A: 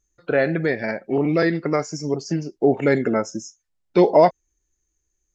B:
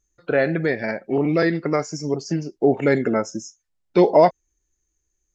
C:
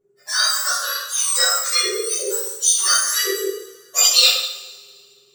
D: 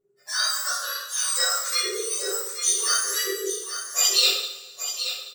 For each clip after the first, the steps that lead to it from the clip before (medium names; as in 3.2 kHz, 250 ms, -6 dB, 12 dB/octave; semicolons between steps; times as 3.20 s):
no audible change
spectrum inverted on a logarithmic axis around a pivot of 1.6 kHz; two-slope reverb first 0.78 s, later 2.1 s, from -18 dB, DRR -7.5 dB; trim -1 dB
delay 830 ms -9.5 dB; trim -6 dB